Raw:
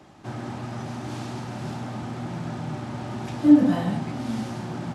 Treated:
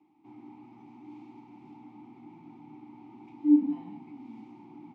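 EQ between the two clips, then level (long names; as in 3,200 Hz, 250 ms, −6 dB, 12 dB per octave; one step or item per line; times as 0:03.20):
formant filter u
−6.0 dB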